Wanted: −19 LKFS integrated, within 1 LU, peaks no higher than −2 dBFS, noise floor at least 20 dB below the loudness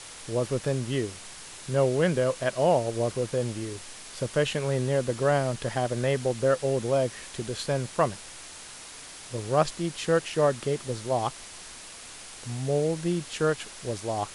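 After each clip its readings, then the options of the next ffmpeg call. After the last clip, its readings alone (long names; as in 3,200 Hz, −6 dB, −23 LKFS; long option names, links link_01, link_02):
background noise floor −44 dBFS; target noise floor −48 dBFS; integrated loudness −27.5 LKFS; sample peak −9.5 dBFS; target loudness −19.0 LKFS
→ -af "afftdn=noise_reduction=6:noise_floor=-44"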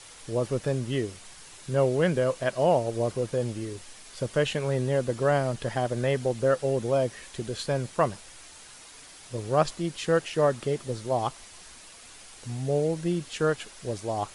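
background noise floor −49 dBFS; integrated loudness −28.0 LKFS; sample peak −9.5 dBFS; target loudness −19.0 LKFS
→ -af "volume=9dB,alimiter=limit=-2dB:level=0:latency=1"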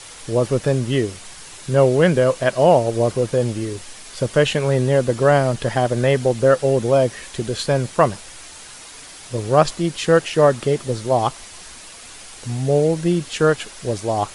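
integrated loudness −19.0 LKFS; sample peak −2.0 dBFS; background noise floor −40 dBFS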